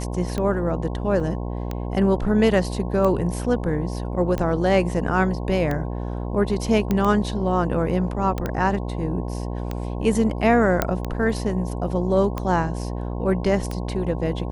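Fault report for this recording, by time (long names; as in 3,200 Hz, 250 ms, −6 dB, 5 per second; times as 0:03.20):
mains buzz 60 Hz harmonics 18 −28 dBFS
scratch tick 45 rpm −14 dBFS
0:01.20: drop-out 4.3 ms
0:06.91: click −10 dBFS
0:08.46: click −13 dBFS
0:10.82: click −5 dBFS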